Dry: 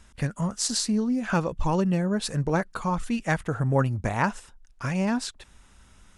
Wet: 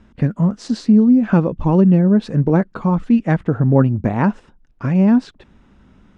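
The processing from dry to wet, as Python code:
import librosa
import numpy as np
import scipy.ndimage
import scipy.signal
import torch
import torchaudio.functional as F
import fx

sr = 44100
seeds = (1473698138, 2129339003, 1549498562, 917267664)

y = scipy.signal.sosfilt(scipy.signal.butter(2, 3400.0, 'lowpass', fs=sr, output='sos'), x)
y = fx.peak_eq(y, sr, hz=240.0, db=15.0, octaves=2.6)
y = y * librosa.db_to_amplitude(-1.0)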